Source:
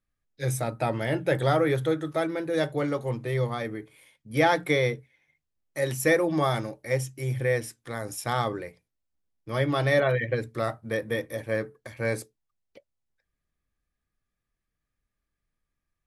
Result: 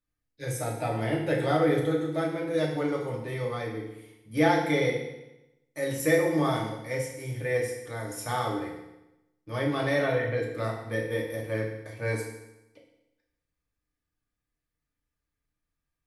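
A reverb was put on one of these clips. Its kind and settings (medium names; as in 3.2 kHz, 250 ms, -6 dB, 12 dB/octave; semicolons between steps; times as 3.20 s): FDN reverb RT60 0.93 s, low-frequency decay 1.1×, high-frequency decay 0.95×, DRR -2 dB; trim -6 dB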